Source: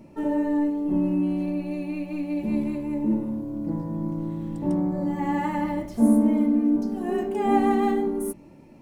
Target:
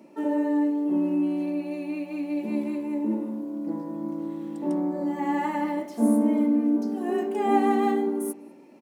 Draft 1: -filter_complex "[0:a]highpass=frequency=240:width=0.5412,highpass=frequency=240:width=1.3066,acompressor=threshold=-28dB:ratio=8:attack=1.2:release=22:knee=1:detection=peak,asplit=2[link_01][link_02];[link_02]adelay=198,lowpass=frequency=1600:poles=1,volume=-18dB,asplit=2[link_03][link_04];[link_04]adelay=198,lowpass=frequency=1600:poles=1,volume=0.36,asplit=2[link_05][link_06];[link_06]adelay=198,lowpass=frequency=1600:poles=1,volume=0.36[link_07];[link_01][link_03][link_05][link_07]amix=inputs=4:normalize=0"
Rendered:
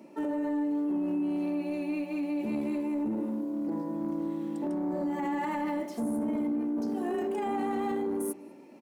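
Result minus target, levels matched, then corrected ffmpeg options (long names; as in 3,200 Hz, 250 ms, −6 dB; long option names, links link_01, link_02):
downward compressor: peak gain reduction +13 dB
-filter_complex "[0:a]highpass=frequency=240:width=0.5412,highpass=frequency=240:width=1.3066,asplit=2[link_01][link_02];[link_02]adelay=198,lowpass=frequency=1600:poles=1,volume=-18dB,asplit=2[link_03][link_04];[link_04]adelay=198,lowpass=frequency=1600:poles=1,volume=0.36,asplit=2[link_05][link_06];[link_06]adelay=198,lowpass=frequency=1600:poles=1,volume=0.36[link_07];[link_01][link_03][link_05][link_07]amix=inputs=4:normalize=0"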